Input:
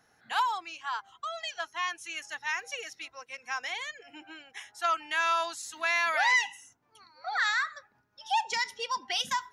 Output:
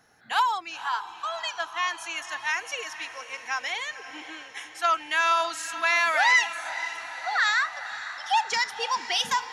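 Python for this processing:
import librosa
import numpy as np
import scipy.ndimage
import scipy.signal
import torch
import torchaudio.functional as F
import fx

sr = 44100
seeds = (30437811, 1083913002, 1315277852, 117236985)

y = fx.echo_diffused(x, sr, ms=511, feedback_pct=61, wet_db=-12.5)
y = F.gain(torch.from_numpy(y), 4.5).numpy()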